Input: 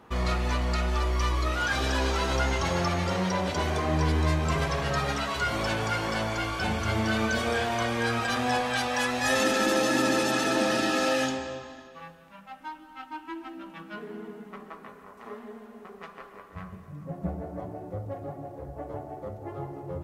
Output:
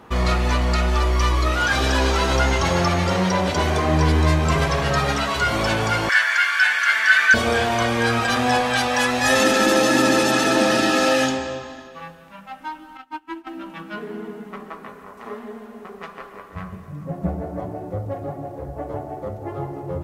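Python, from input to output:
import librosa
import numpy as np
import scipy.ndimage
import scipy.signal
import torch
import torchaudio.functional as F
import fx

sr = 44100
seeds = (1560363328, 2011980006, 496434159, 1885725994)

y = fx.highpass_res(x, sr, hz=1700.0, q=7.5, at=(6.09, 7.34))
y = fx.upward_expand(y, sr, threshold_db=-47.0, expansion=2.5, at=(12.97, 13.47))
y = F.gain(torch.from_numpy(y), 7.5).numpy()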